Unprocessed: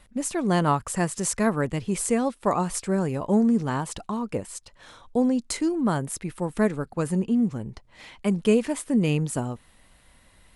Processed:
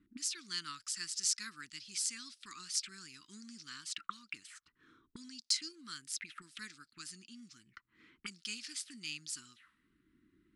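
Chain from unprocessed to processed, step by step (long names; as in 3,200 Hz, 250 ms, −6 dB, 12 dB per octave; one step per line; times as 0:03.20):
envelope filter 310–4,900 Hz, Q 3.9, up, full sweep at −26 dBFS
Chebyshev band-stop filter 320–1,300 Hz, order 3
level +7 dB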